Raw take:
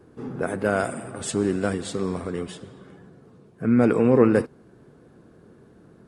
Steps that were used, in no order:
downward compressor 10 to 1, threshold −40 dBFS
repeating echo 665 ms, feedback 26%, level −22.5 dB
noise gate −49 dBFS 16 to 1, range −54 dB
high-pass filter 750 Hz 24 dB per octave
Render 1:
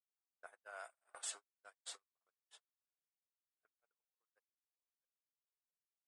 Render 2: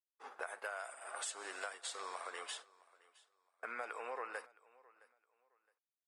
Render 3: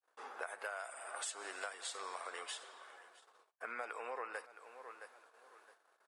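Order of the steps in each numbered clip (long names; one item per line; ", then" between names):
repeating echo, then downward compressor, then high-pass filter, then noise gate
high-pass filter, then downward compressor, then noise gate, then repeating echo
repeating echo, then noise gate, then high-pass filter, then downward compressor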